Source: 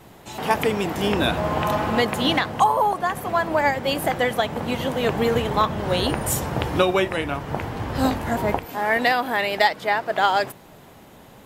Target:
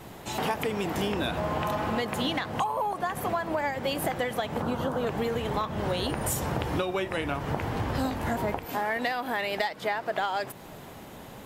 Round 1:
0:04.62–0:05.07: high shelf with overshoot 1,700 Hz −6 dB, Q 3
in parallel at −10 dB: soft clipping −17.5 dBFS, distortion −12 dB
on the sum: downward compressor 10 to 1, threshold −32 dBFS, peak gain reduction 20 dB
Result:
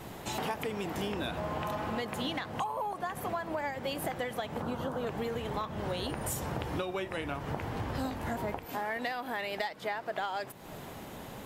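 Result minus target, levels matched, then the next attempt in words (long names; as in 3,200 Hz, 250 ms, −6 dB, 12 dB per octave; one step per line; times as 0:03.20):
downward compressor: peak gain reduction +6 dB
0:04.62–0:05.07: high shelf with overshoot 1,700 Hz −6 dB, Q 3
in parallel at −10 dB: soft clipping −17.5 dBFS, distortion −12 dB
on the sum: downward compressor 10 to 1, threshold −25.5 dBFS, peak gain reduction 14 dB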